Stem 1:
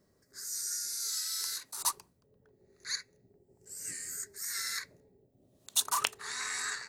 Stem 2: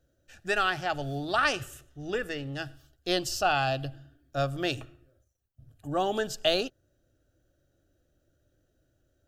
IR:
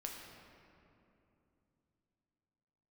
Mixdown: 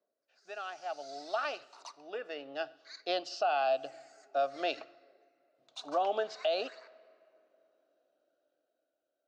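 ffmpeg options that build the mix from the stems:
-filter_complex "[0:a]aphaser=in_gain=1:out_gain=1:delay=4.8:decay=0.57:speed=0.58:type=sinusoidal,volume=0.106,asplit=2[s0][s1];[s1]volume=0.355[s2];[1:a]volume=0.355,afade=t=in:st=2.11:d=0.5:silence=0.421697,asplit=3[s3][s4][s5];[s4]volume=0.0631[s6];[s5]apad=whole_len=303558[s7];[s0][s7]sidechaincompress=threshold=0.01:ratio=8:attack=16:release=336[s8];[2:a]atrim=start_sample=2205[s9];[s2][s6]amix=inputs=2:normalize=0[s10];[s10][s9]afir=irnorm=-1:irlink=0[s11];[s8][s3][s11]amix=inputs=3:normalize=0,dynaudnorm=f=110:g=17:m=2.51,highpass=f=340:w=0.5412,highpass=f=340:w=1.3066,equalizer=f=360:t=q:w=4:g=-7,equalizer=f=670:t=q:w=4:g=8,equalizer=f=1800:t=q:w=4:g=-8,equalizer=f=3300:t=q:w=4:g=-5,lowpass=f=4400:w=0.5412,lowpass=f=4400:w=1.3066,alimiter=limit=0.0841:level=0:latency=1:release=200"

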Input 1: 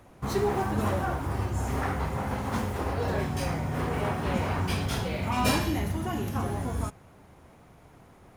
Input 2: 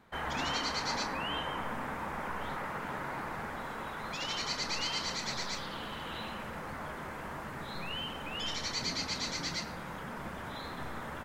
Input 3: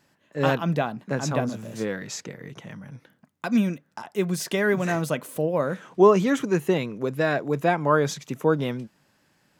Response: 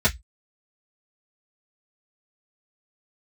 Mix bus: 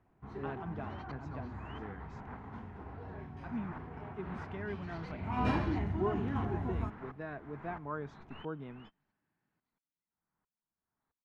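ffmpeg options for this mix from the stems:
-filter_complex "[0:a]bandreject=f=1200:w=17,volume=0.596,afade=t=in:st=5.05:d=0.38:silence=0.266073[s0];[1:a]acompressor=threshold=0.0126:ratio=6,aeval=exprs='val(0)*pow(10,-24*if(lt(mod(-1.5*n/s,1),2*abs(-1.5)/1000),1-mod(-1.5*n/s,1)/(2*abs(-1.5)/1000),(mod(-1.5*n/s,1)-2*abs(-1.5)/1000)/(1-2*abs(-1.5)/1000))/20)':c=same,adelay=450,volume=0.841[s1];[2:a]volume=0.133,asplit=2[s2][s3];[s3]apad=whole_len=515614[s4];[s1][s4]sidechaingate=range=0.0112:threshold=0.00178:ratio=16:detection=peak[s5];[s0][s5][s2]amix=inputs=3:normalize=0,lowpass=1800,equalizer=f=540:t=o:w=0.26:g=-11.5"

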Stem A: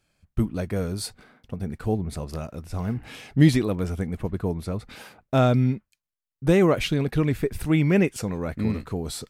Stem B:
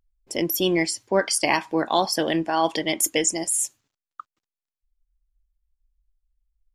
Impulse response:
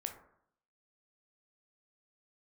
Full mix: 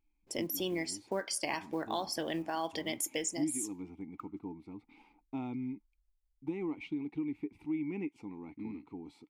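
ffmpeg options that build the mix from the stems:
-filter_complex "[0:a]asplit=3[s0][s1][s2];[s0]bandpass=f=300:t=q:w=8,volume=1[s3];[s1]bandpass=f=870:t=q:w=8,volume=0.501[s4];[s2]bandpass=f=2240:t=q:w=8,volume=0.355[s5];[s3][s4][s5]amix=inputs=3:normalize=0,volume=0.668[s6];[1:a]acrusher=bits=8:mode=log:mix=0:aa=0.000001,volume=0.376,asplit=2[s7][s8];[s8]volume=0.141[s9];[2:a]atrim=start_sample=2205[s10];[s9][s10]afir=irnorm=-1:irlink=0[s11];[s6][s7][s11]amix=inputs=3:normalize=0,acompressor=threshold=0.02:ratio=2.5"

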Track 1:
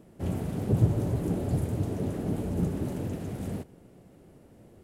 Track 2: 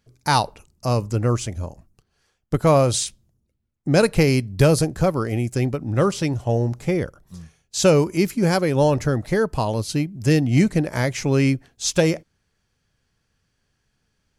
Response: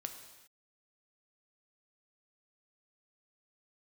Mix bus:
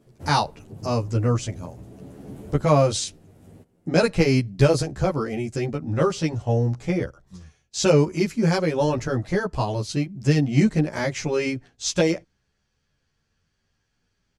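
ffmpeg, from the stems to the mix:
-filter_complex "[0:a]volume=0.841[s0];[1:a]lowpass=6700,volume=1.12,asplit=2[s1][s2];[s2]apad=whole_len=213049[s3];[s0][s3]sidechaincompress=threshold=0.0447:ratio=8:attack=48:release=1450[s4];[s4][s1]amix=inputs=2:normalize=0,equalizer=f=6700:w=1.5:g=2,asplit=2[s5][s6];[s6]adelay=11.4,afreqshift=0.39[s7];[s5][s7]amix=inputs=2:normalize=1"

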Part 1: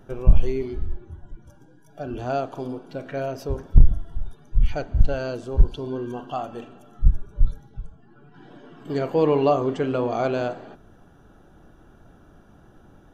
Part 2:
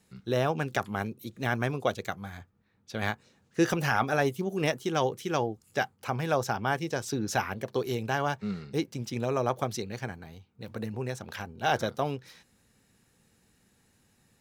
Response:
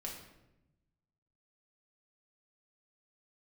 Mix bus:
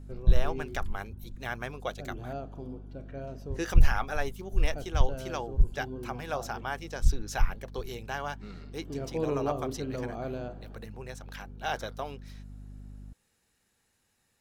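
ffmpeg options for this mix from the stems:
-filter_complex "[0:a]lowshelf=f=400:g=9.5,aeval=exprs='val(0)+0.0447*(sin(2*PI*50*n/s)+sin(2*PI*2*50*n/s)/2+sin(2*PI*3*50*n/s)/3+sin(2*PI*4*50*n/s)/4+sin(2*PI*5*50*n/s)/5)':c=same,volume=0.15[s0];[1:a]equalizer=f=170:w=0.55:g=-9.5,volume=0.596,asplit=3[s1][s2][s3];[s1]atrim=end=2.33,asetpts=PTS-STARTPTS,afade=t=out:st=2.326:d=0.004:c=hsin[s4];[s2]atrim=start=2.33:end=3.27,asetpts=PTS-STARTPTS,volume=0[s5];[s3]atrim=start=3.27,asetpts=PTS-STARTPTS,afade=t=in:d=0.004:c=hsin[s6];[s4][s5][s6]concat=n=3:v=0:a=1[s7];[s0][s7]amix=inputs=2:normalize=0"

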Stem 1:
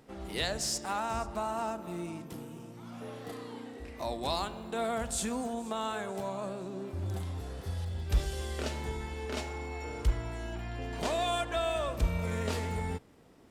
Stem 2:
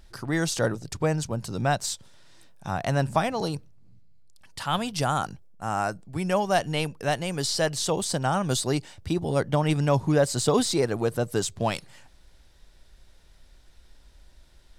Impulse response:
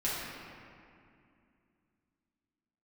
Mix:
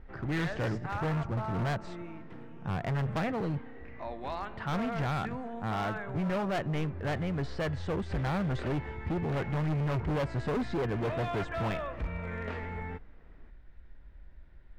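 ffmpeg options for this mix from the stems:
-filter_complex "[0:a]volume=0.562[s0];[1:a]lowshelf=f=470:g=12,volume=0.335[s1];[s0][s1]amix=inputs=2:normalize=0,lowpass=f=1900:t=q:w=2.2,asoftclip=type=hard:threshold=0.0398"

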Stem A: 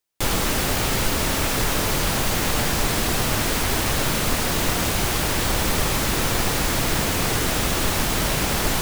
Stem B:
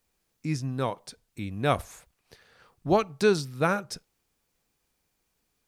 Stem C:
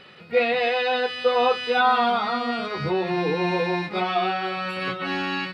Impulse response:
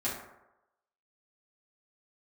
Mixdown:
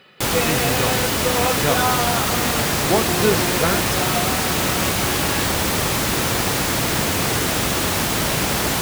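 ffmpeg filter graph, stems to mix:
-filter_complex "[0:a]volume=1.33[s0];[1:a]volume=1.26[s1];[2:a]volume=0.75[s2];[s0][s1][s2]amix=inputs=3:normalize=0,highpass=75"

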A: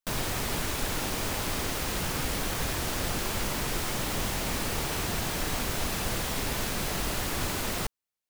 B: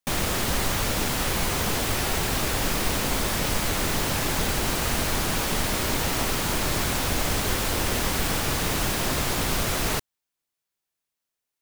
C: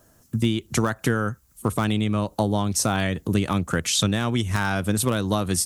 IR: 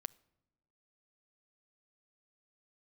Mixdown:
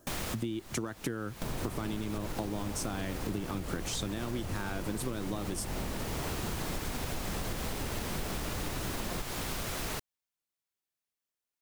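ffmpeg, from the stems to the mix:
-filter_complex "[0:a]tiltshelf=f=970:g=5,alimiter=limit=0.0794:level=0:latency=1:release=161,adelay=1350,volume=1.26[s0];[1:a]volume=0.447[s1];[2:a]equalizer=f=330:w=2.2:g=8.5,volume=0.531,asplit=2[s2][s3];[s3]apad=whole_len=512409[s4];[s1][s4]sidechaincompress=threshold=0.0178:ratio=8:attack=27:release=774[s5];[s0][s5][s2]amix=inputs=3:normalize=0,acompressor=threshold=0.0251:ratio=6"

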